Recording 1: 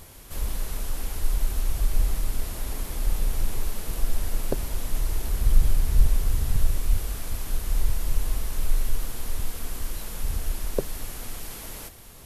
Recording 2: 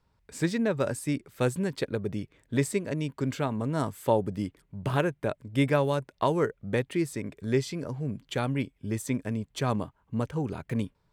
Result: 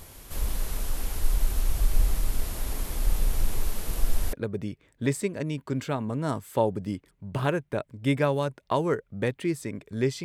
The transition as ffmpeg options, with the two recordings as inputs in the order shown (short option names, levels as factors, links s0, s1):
-filter_complex "[0:a]apad=whole_dur=10.24,atrim=end=10.24,atrim=end=4.332[s0];[1:a]atrim=start=1.838:end=7.75[s1];[s0][s1]acrossfade=d=0.004:c1=hsin:c2=hsin"